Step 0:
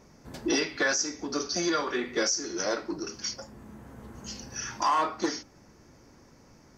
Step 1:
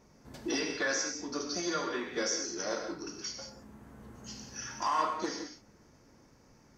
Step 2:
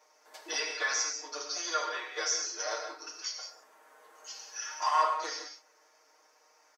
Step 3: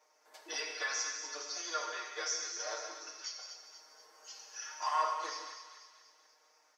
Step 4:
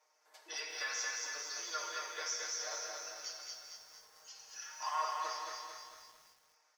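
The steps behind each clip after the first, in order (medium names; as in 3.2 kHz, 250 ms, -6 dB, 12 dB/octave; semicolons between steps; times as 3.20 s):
gated-style reverb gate 210 ms flat, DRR 3.5 dB; trim -6.5 dB
high-pass 570 Hz 24 dB/octave; comb 6.5 ms, depth 88%
thinning echo 242 ms, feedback 54%, high-pass 1.1 kHz, level -8 dB; trim -5.5 dB
high-pass 600 Hz 6 dB/octave; bit-crushed delay 223 ms, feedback 55%, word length 10-bit, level -3 dB; trim -3 dB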